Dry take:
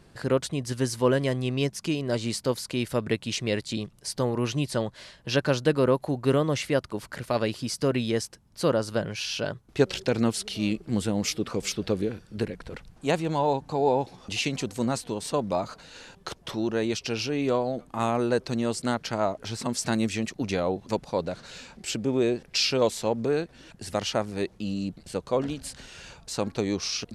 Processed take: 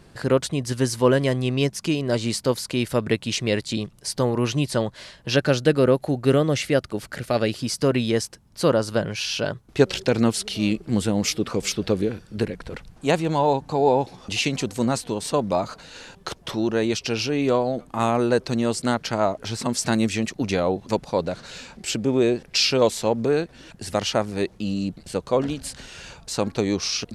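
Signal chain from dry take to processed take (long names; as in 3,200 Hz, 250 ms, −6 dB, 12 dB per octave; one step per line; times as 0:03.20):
0:05.36–0:07.59: parametric band 1,000 Hz −10 dB 0.26 octaves
level +4.5 dB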